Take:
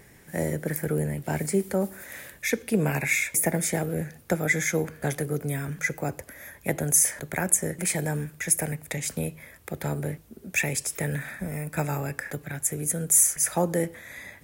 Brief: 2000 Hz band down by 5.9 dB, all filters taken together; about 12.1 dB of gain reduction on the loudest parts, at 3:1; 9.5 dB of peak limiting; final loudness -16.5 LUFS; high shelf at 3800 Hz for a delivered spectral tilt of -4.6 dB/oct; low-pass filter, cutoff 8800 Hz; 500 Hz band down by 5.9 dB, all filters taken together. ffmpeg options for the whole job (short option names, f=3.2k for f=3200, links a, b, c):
-af "lowpass=8.8k,equalizer=f=500:t=o:g=-7,equalizer=f=2k:t=o:g=-7.5,highshelf=f=3.8k:g=4,acompressor=threshold=-34dB:ratio=3,volume=21.5dB,alimiter=limit=-5.5dB:level=0:latency=1"